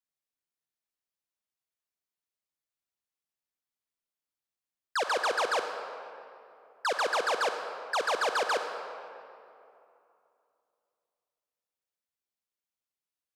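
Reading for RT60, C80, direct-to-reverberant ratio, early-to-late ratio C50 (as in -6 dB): 2.8 s, 7.0 dB, 6.0 dB, 6.0 dB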